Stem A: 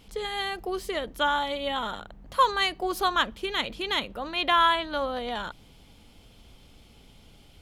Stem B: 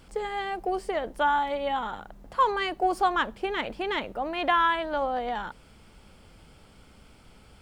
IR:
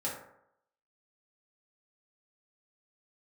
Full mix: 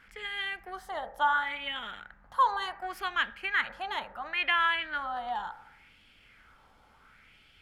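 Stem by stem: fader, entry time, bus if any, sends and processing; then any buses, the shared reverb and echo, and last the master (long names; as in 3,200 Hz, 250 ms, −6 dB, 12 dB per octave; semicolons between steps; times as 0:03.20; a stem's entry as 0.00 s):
−13.0 dB, 0.00 s, no send, no processing
−4.0 dB, 0.00 s, send −14.5 dB, parametric band 1,800 Hz +13 dB 1.5 octaves; auto-filter band-pass sine 0.7 Hz 790–3,200 Hz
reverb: on, RT60 0.75 s, pre-delay 3 ms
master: no processing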